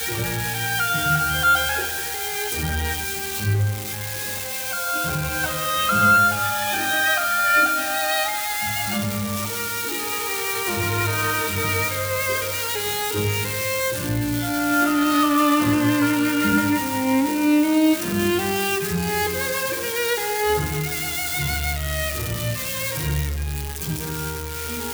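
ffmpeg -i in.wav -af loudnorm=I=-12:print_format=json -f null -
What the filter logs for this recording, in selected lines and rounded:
"input_i" : "-21.7",
"input_tp" : "-7.2",
"input_lra" : "6.9",
"input_thresh" : "-31.7",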